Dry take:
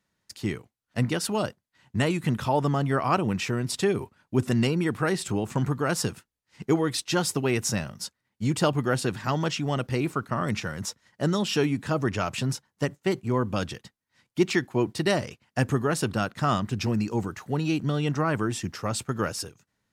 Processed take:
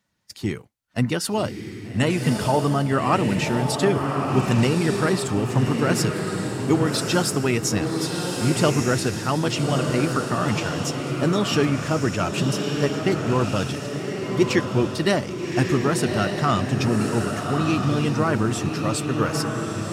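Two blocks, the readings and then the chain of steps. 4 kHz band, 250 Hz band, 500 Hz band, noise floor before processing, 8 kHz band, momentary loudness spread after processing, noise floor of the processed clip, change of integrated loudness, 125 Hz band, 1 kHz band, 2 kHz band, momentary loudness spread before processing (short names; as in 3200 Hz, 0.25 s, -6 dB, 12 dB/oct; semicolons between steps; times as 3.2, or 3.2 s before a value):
+5.0 dB, +5.0 dB, +5.0 dB, -82 dBFS, +4.5 dB, 6 LU, -35 dBFS, +4.5 dB, +5.0 dB, +4.5 dB, +4.5 dB, 8 LU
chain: bin magnitudes rounded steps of 15 dB; diffused feedback echo 1.198 s, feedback 40%, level -3.5 dB; gain +3.5 dB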